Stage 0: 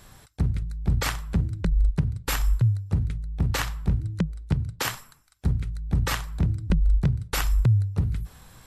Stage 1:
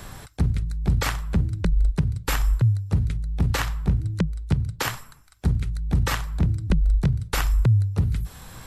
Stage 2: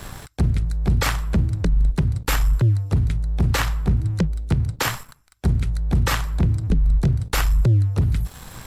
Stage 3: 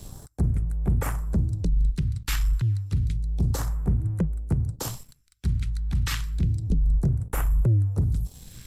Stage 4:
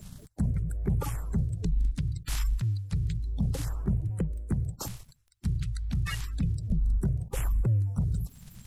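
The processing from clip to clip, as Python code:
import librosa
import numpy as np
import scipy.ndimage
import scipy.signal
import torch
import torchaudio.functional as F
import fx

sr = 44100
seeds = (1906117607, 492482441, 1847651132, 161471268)

y1 = fx.band_squash(x, sr, depth_pct=40)
y1 = y1 * librosa.db_to_amplitude(2.0)
y2 = fx.leveller(y1, sr, passes=2)
y2 = y2 * librosa.db_to_amplitude(-3.0)
y3 = fx.phaser_stages(y2, sr, stages=2, low_hz=490.0, high_hz=4000.0, hz=0.3, feedback_pct=35)
y3 = y3 * librosa.db_to_amplitude(-6.0)
y4 = fx.spec_quant(y3, sr, step_db=30)
y4 = y4 * librosa.db_to_amplitude(-4.0)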